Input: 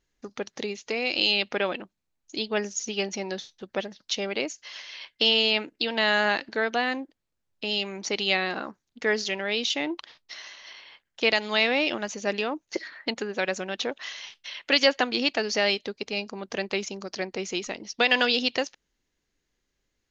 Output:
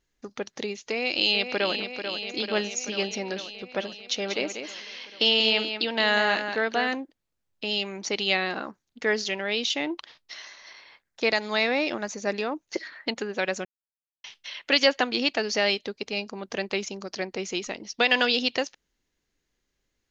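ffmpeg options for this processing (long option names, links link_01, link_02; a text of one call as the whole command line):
ffmpeg -i in.wav -filter_complex "[0:a]asplit=2[link_01][link_02];[link_02]afade=type=in:start_time=0.9:duration=0.01,afade=type=out:start_time=1.74:duration=0.01,aecho=0:1:440|880|1320|1760|2200|2640|3080|3520|3960|4400|4840|5280:0.398107|0.29858|0.223935|0.167951|0.125964|0.0944727|0.0708545|0.0531409|0.0398557|0.0298918|0.0224188|0.0168141[link_03];[link_01][link_03]amix=inputs=2:normalize=0,asplit=3[link_04][link_05][link_06];[link_04]afade=type=out:start_time=4.15:duration=0.02[link_07];[link_05]aecho=1:1:189:0.398,afade=type=in:start_time=4.15:duration=0.02,afade=type=out:start_time=6.93:duration=0.02[link_08];[link_06]afade=type=in:start_time=6.93:duration=0.02[link_09];[link_07][link_08][link_09]amix=inputs=3:normalize=0,asettb=1/sr,asplit=3[link_10][link_11][link_12];[link_10]atrim=end=10.454[link_13];[link_11]atrim=start=10.45:end=12.52,asetpts=PTS-STARTPTS,afade=type=in:duration=0.004:curve=qsin,afade=type=out:start_time=2.066:duration=0.004:curve=qsin,equalizer=frequency=3000:width_type=o:width=0.29:gain=-10.5[link_14];[link_12]atrim=start=12.516[link_15];[link_13][link_14]acrossfade=duration=0.004:curve1=hsin:curve2=qsin[link_16];[link_16][link_15]acrossfade=duration=0.004:curve1=qsin:curve2=hsin,asplit=3[link_17][link_18][link_19];[link_17]atrim=end=13.65,asetpts=PTS-STARTPTS,afade=type=out:start_time=13.646:duration=0.004:curve=hsin[link_20];[link_18]atrim=start=13.65:end=14.24,asetpts=PTS-STARTPTS,volume=0[link_21];[link_19]atrim=start=14.24,asetpts=PTS-STARTPTS,afade=type=in:duration=0.004:curve=hsin[link_22];[link_20][link_21][link_22]concat=n=3:v=0:a=1" out.wav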